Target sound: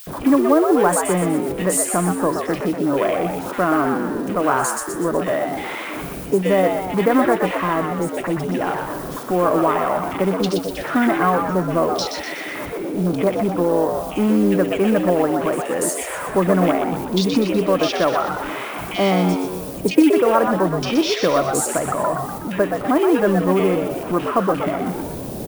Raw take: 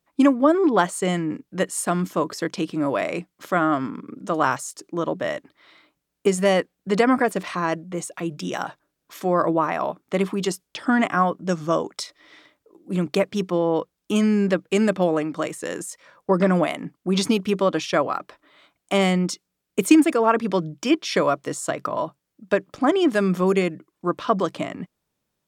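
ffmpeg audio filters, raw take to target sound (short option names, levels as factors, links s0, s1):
-filter_complex "[0:a]aeval=exprs='val(0)+0.5*0.0562*sgn(val(0))':c=same,afwtdn=0.0316,lowshelf=f=94:g=-4.5,asplit=2[s0][s1];[s1]acompressor=threshold=0.0282:ratio=5,volume=1.26[s2];[s0][s2]amix=inputs=2:normalize=0,acrossover=split=2000[s3][s4];[s3]adelay=70[s5];[s5][s4]amix=inputs=2:normalize=0,acrusher=bits=7:mode=log:mix=0:aa=0.000001,aexciter=amount=1.4:drive=6.8:freq=9200,asplit=2[s6][s7];[s7]asplit=6[s8][s9][s10][s11][s12][s13];[s8]adelay=123,afreqshift=93,volume=0.501[s14];[s9]adelay=246,afreqshift=186,volume=0.245[s15];[s10]adelay=369,afreqshift=279,volume=0.12[s16];[s11]adelay=492,afreqshift=372,volume=0.0589[s17];[s12]adelay=615,afreqshift=465,volume=0.0288[s18];[s13]adelay=738,afreqshift=558,volume=0.0141[s19];[s14][s15][s16][s17][s18][s19]amix=inputs=6:normalize=0[s20];[s6][s20]amix=inputs=2:normalize=0,volume=0.891"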